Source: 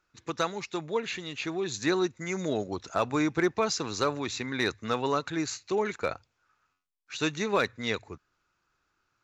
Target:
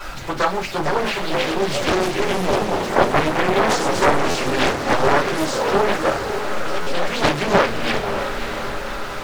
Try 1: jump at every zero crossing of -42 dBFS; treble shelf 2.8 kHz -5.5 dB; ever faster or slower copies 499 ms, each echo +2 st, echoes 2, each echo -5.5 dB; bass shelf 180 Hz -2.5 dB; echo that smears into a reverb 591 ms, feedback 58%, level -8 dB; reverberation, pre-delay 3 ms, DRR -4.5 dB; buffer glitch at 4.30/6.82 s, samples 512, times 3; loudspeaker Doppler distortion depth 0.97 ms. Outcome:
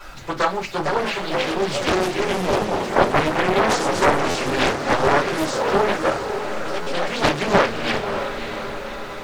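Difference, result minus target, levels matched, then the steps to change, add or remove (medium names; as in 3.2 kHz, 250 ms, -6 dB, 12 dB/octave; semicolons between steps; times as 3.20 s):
jump at every zero crossing: distortion -7 dB
change: jump at every zero crossing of -34.5 dBFS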